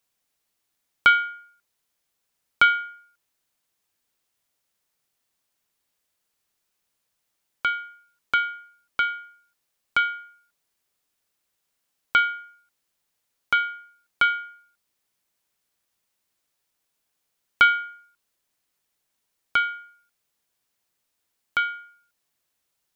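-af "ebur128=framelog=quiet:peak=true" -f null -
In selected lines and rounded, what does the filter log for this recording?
Integrated loudness:
  I:         -23.2 LUFS
  Threshold: -35.2 LUFS
Loudness range:
  LRA:         8.4 LU
  Threshold: -48.7 LUFS
  LRA low:   -33.1 LUFS
  LRA high:  -24.8 LUFS
True peak:
  Peak:       -3.6 dBFS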